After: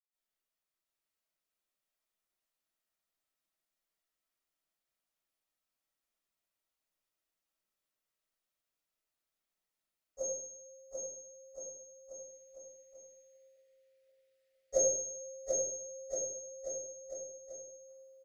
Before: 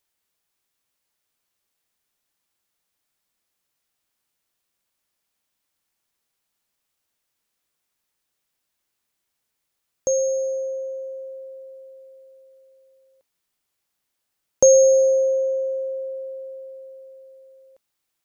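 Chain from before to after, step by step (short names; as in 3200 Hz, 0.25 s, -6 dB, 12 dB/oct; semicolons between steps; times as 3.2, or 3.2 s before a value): 12.05–14.63 graphic EQ 125/250/500/1000/2000/4000 Hz +6/-5/+8/-11/+12/+5 dB; bouncing-ball echo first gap 0.74 s, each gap 0.85×, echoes 5; reverb RT60 0.70 s, pre-delay 0.1 s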